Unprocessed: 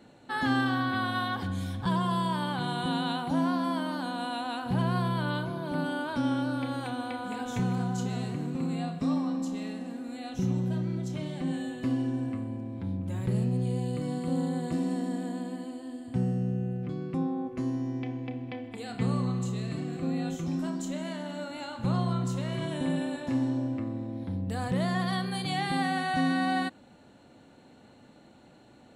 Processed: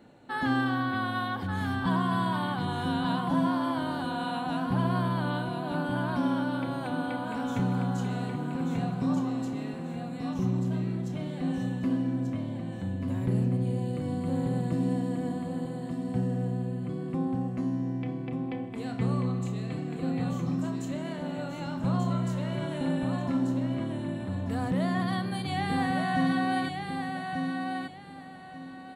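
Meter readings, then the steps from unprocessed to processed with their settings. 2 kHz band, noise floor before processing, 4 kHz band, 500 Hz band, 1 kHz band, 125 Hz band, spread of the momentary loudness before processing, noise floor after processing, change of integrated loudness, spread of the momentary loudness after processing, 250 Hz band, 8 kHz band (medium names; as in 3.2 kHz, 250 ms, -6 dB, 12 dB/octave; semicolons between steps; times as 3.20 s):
0.0 dB, -55 dBFS, -2.5 dB, +1.0 dB, +1.0 dB, +1.0 dB, 8 LU, -39 dBFS, +0.5 dB, 7 LU, +1.0 dB, no reading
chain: peaking EQ 6.1 kHz -6 dB 1.9 oct; on a send: feedback delay 1187 ms, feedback 26%, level -5 dB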